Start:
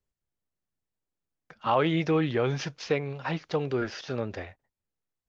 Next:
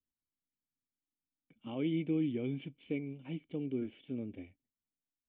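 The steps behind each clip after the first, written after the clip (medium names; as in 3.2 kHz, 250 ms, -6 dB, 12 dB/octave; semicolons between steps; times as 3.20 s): dynamic bell 630 Hz, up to +4 dB, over -38 dBFS, Q 0.73; cascade formant filter i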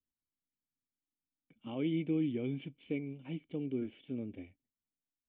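no audible change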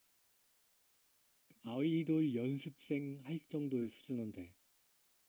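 word length cut 12-bit, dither triangular; trim -2 dB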